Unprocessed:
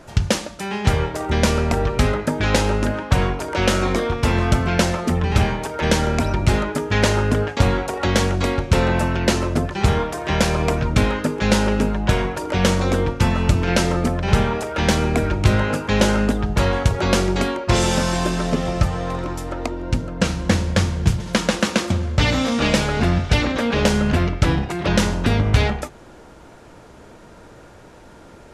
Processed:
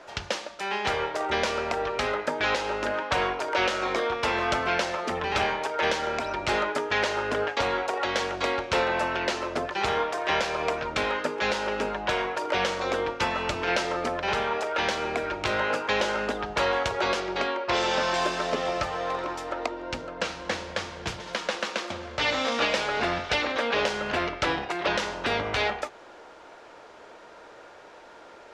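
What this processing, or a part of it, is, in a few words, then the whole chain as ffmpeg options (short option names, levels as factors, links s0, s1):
DJ mixer with the lows and highs turned down: -filter_complex "[0:a]acrossover=split=390 6000:gain=0.0794 1 0.141[s0][s1][s2];[s0][s1][s2]amix=inputs=3:normalize=0,alimiter=limit=0.211:level=0:latency=1:release=389,asettb=1/sr,asplit=3[s3][s4][s5];[s3]atrim=end=17.204[s6];[s4]atrim=start=17.2:end=18.14,asetpts=PTS-STARTPTS,afade=t=in:d=0.004:c=qsin,afade=t=out:st=0.936:d=0.004:c=qsin,lowpass=5400[s7];[s5]atrim=start=18.136[s8];[s6][s7]acrossfade=d=0.004:c1=hsin:c2=qsin[s9];[s9][s8]acrossfade=d=0.004:c1=qsin:c2=hsin"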